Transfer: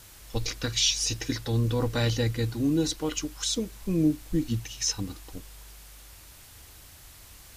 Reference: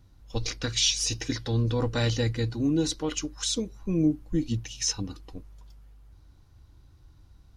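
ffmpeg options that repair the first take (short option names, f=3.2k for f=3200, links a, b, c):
-af "afwtdn=0.0032"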